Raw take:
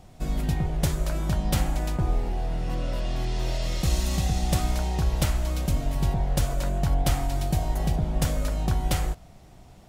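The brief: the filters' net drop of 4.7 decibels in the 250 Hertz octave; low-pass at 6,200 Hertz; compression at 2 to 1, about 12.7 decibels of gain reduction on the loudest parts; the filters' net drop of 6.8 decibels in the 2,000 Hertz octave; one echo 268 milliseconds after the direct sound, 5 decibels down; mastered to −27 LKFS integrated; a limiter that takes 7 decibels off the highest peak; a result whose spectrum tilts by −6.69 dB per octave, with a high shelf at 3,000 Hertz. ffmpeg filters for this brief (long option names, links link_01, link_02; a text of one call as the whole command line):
ffmpeg -i in.wav -af "lowpass=6200,equalizer=frequency=250:width_type=o:gain=-8.5,equalizer=frequency=2000:width_type=o:gain=-6.5,highshelf=frequency=3000:gain=-5.5,acompressor=threshold=-44dB:ratio=2,alimiter=level_in=7.5dB:limit=-24dB:level=0:latency=1,volume=-7.5dB,aecho=1:1:268:0.562,volume=14dB" out.wav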